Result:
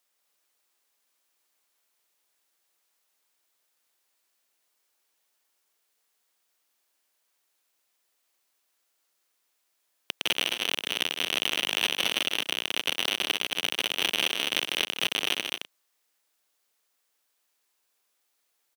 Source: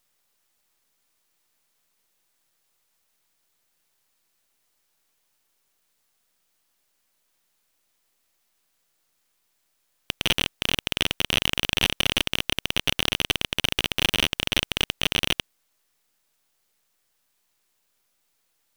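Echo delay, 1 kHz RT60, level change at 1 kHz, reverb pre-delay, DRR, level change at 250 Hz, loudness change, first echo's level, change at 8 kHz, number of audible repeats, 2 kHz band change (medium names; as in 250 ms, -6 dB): 154 ms, no reverb, -2.5 dB, no reverb, no reverb, -8.0 dB, -2.5 dB, -11.0 dB, -2.5 dB, 3, -2.5 dB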